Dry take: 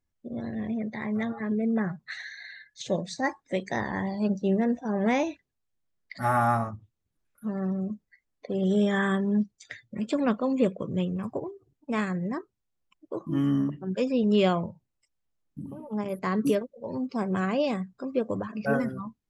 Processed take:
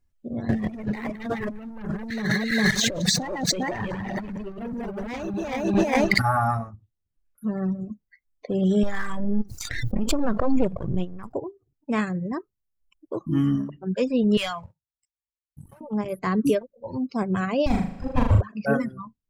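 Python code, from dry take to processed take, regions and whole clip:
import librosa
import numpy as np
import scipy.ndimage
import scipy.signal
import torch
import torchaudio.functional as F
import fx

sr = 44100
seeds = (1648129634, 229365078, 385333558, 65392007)

y = fx.chain(x, sr, fx.reverse_delay_fb(ms=202, feedback_pct=57, wet_db=-2),
    fx.leveller(passes=3),
    fx.over_compress(threshold_db=-29.0, ratio=-1.0), at=(0.49, 6.22))
y = fx.chain(y, sr, fx.halfwave_gain(db=-12.0),
    fx.peak_eq(hz=2700.0, db=-5.5, octaves=1.2),
    fx.pre_swell(db_per_s=20.0), at=(8.83, 11.35))
y = fx.chain(y, sr, fx.highpass(hz=45.0, slope=12),
    fx.tone_stack(knobs='10-0-10'),
    fx.leveller(passes=2), at=(14.37, 15.81))
y = fx.chain(y, sr, fx.lower_of_two(delay_ms=1.2),
    fx.peak_eq(hz=81.0, db=15.0, octaves=1.3),
    fx.room_flutter(wall_m=6.7, rt60_s=1.2), at=(17.66, 18.41))
y = fx.dereverb_blind(y, sr, rt60_s=2.0)
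y = fx.low_shelf(y, sr, hz=95.0, db=11.5)
y = fx.notch(y, sr, hz=3500.0, q=30.0)
y = y * librosa.db_to_amplitude(3.0)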